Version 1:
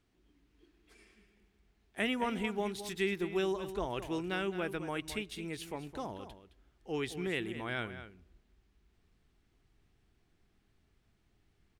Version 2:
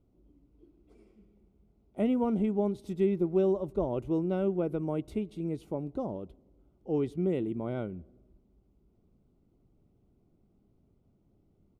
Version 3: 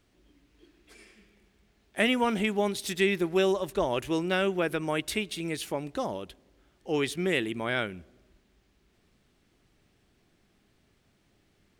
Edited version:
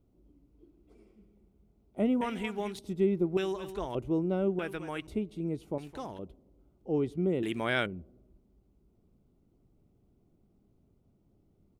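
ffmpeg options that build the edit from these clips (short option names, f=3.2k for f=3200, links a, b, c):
-filter_complex "[0:a]asplit=4[a][b][c][d];[1:a]asplit=6[e][f][g][h][i][j];[e]atrim=end=2.212[k];[a]atrim=start=2.208:end=2.792[l];[f]atrim=start=2.788:end=3.372[m];[b]atrim=start=3.368:end=3.952[n];[g]atrim=start=3.948:end=4.592[o];[c]atrim=start=4.588:end=5.072[p];[h]atrim=start=5.068:end=5.782[q];[d]atrim=start=5.778:end=6.192[r];[i]atrim=start=6.188:end=7.432[s];[2:a]atrim=start=7.428:end=7.862[t];[j]atrim=start=7.858[u];[k][l]acrossfade=d=0.004:c1=hsin:c2=hsin[v];[v][m]acrossfade=d=0.004:c1=hsin:c2=hsin[w];[w][n]acrossfade=d=0.004:c1=hsin:c2=hsin[x];[x][o]acrossfade=d=0.004:c1=hsin:c2=hsin[y];[y][p]acrossfade=d=0.004:c1=hsin:c2=hsin[z];[z][q]acrossfade=d=0.004:c1=hsin:c2=hsin[aa];[aa][r]acrossfade=d=0.004:c1=hsin:c2=hsin[ab];[ab][s]acrossfade=d=0.004:c1=hsin:c2=hsin[ac];[ac][t]acrossfade=d=0.004:c1=hsin:c2=hsin[ad];[ad][u]acrossfade=d=0.004:c1=hsin:c2=hsin"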